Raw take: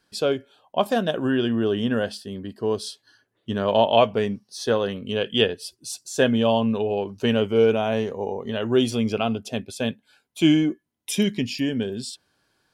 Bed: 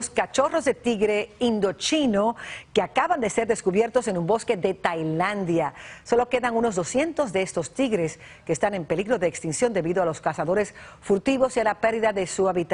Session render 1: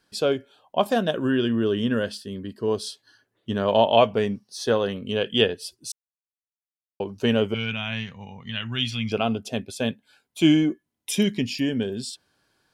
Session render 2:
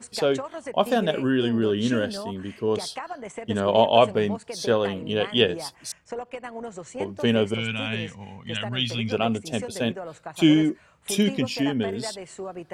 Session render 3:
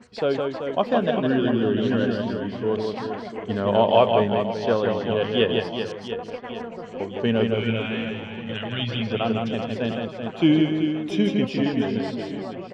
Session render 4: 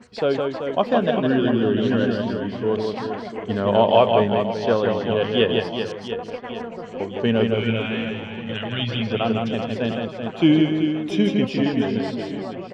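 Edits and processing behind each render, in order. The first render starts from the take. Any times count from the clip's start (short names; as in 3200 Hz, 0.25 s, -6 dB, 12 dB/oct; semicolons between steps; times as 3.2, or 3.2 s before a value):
1.13–2.68 bell 750 Hz -12 dB 0.33 oct; 5.92–7 mute; 7.54–9.12 EQ curve 180 Hz 0 dB, 410 Hz -25 dB, 1500 Hz -1 dB, 2200 Hz +6 dB, 3200 Hz +5 dB, 8900 Hz -11 dB
add bed -13 dB
air absorption 230 m; reverse bouncing-ball echo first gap 0.16 s, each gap 1.4×, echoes 5
gain +2 dB; limiter -3 dBFS, peak gain reduction 1 dB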